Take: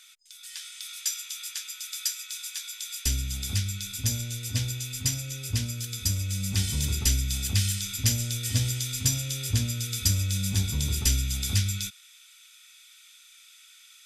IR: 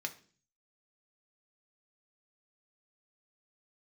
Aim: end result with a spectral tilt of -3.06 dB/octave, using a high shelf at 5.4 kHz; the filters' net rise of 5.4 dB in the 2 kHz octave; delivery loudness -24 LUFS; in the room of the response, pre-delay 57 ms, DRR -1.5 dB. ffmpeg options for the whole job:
-filter_complex "[0:a]equalizer=f=2000:t=o:g=7.5,highshelf=f=5400:g=-3.5,asplit=2[s0][s1];[1:a]atrim=start_sample=2205,adelay=57[s2];[s1][s2]afir=irnorm=-1:irlink=0,volume=1.06[s3];[s0][s3]amix=inputs=2:normalize=0,volume=1.26"

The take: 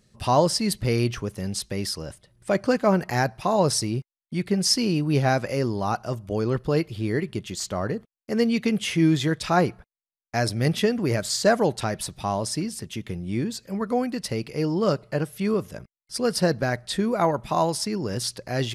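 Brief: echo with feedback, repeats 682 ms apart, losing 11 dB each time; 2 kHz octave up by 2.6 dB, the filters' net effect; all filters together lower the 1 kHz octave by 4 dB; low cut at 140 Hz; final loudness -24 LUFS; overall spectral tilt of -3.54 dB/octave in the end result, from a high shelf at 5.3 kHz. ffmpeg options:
-af "highpass=140,equalizer=f=1000:t=o:g=-7,equalizer=f=2000:t=o:g=4.5,highshelf=f=5300:g=8.5,aecho=1:1:682|1364|2046:0.282|0.0789|0.0221,volume=1.06"

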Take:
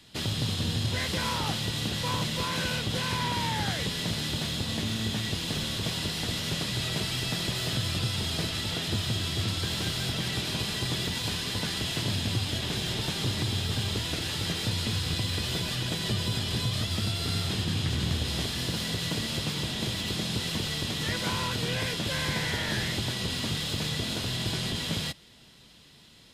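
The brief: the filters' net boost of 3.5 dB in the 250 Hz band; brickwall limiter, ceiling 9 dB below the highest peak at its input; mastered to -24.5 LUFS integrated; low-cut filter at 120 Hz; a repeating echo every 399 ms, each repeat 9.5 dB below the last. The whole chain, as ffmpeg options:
-af "highpass=120,equalizer=f=250:t=o:g=5.5,alimiter=limit=0.0708:level=0:latency=1,aecho=1:1:399|798|1197|1596:0.335|0.111|0.0365|0.012,volume=2.11"

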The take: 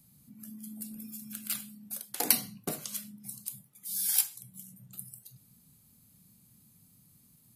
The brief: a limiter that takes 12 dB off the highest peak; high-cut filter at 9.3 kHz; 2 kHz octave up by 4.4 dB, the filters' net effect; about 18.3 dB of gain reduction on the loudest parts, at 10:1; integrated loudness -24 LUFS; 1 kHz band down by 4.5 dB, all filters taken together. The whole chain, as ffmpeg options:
-af "lowpass=9300,equalizer=f=1000:t=o:g=-8.5,equalizer=f=2000:t=o:g=7.5,acompressor=threshold=0.00631:ratio=10,volume=21.1,alimiter=limit=0.266:level=0:latency=1"

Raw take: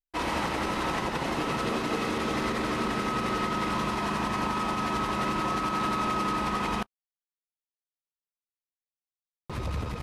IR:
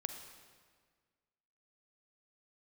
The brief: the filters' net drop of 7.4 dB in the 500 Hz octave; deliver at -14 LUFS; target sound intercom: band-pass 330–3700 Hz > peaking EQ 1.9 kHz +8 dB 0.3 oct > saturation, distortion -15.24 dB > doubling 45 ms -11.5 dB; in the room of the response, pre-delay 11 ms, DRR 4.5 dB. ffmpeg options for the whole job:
-filter_complex "[0:a]equalizer=f=500:t=o:g=-8.5,asplit=2[s0][s1];[1:a]atrim=start_sample=2205,adelay=11[s2];[s1][s2]afir=irnorm=-1:irlink=0,volume=0.631[s3];[s0][s3]amix=inputs=2:normalize=0,highpass=330,lowpass=3700,equalizer=f=1900:t=o:w=0.3:g=8,asoftclip=threshold=0.0562,asplit=2[s4][s5];[s5]adelay=45,volume=0.266[s6];[s4][s6]amix=inputs=2:normalize=0,volume=6.68"

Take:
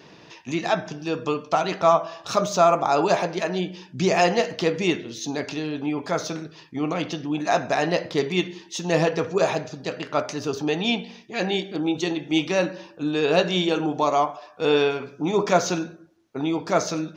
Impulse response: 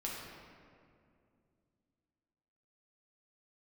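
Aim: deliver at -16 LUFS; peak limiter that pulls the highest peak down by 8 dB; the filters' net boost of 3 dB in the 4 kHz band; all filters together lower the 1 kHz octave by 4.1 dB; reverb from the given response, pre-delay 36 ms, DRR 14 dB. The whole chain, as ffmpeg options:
-filter_complex "[0:a]equalizer=f=1000:t=o:g=-6.5,equalizer=f=4000:t=o:g=4,alimiter=limit=0.2:level=0:latency=1,asplit=2[s0][s1];[1:a]atrim=start_sample=2205,adelay=36[s2];[s1][s2]afir=irnorm=-1:irlink=0,volume=0.168[s3];[s0][s3]amix=inputs=2:normalize=0,volume=3.35"

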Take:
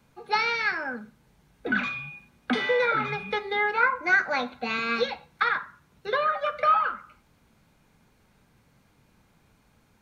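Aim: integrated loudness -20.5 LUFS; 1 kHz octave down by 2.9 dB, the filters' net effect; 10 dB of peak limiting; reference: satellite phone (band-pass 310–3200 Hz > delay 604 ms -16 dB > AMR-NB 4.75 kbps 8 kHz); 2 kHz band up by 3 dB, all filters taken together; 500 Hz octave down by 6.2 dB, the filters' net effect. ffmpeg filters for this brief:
-af "equalizer=f=500:t=o:g=-5,equalizer=f=1000:t=o:g=-6.5,equalizer=f=2000:t=o:g=7.5,alimiter=limit=0.126:level=0:latency=1,highpass=310,lowpass=3200,aecho=1:1:604:0.158,volume=2.99" -ar 8000 -c:a libopencore_amrnb -b:a 4750

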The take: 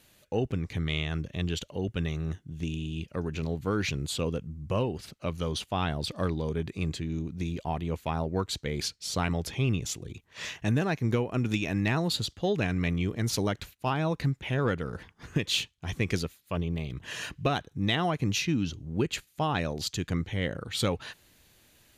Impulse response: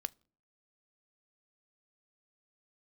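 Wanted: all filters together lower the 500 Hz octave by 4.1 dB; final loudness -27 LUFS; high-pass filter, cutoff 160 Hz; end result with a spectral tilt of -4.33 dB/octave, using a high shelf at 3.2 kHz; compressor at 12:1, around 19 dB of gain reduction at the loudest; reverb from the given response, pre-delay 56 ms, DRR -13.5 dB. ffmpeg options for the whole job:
-filter_complex "[0:a]highpass=160,equalizer=f=500:t=o:g=-5,highshelf=f=3200:g=-4.5,acompressor=threshold=0.00562:ratio=12,asplit=2[s0][s1];[1:a]atrim=start_sample=2205,adelay=56[s2];[s1][s2]afir=irnorm=-1:irlink=0,volume=5.62[s3];[s0][s3]amix=inputs=2:normalize=0,volume=2.99"

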